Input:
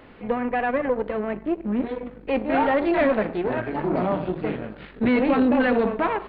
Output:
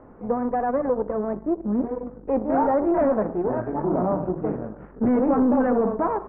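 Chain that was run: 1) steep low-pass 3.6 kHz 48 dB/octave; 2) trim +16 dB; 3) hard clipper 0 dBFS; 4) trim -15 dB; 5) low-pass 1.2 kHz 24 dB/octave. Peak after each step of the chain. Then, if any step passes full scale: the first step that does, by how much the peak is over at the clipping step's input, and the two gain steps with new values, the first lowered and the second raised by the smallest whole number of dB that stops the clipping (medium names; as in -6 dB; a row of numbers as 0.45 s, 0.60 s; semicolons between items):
-11.0 dBFS, +5.0 dBFS, 0.0 dBFS, -15.0 dBFS, -13.5 dBFS; step 2, 5.0 dB; step 2 +11 dB, step 4 -10 dB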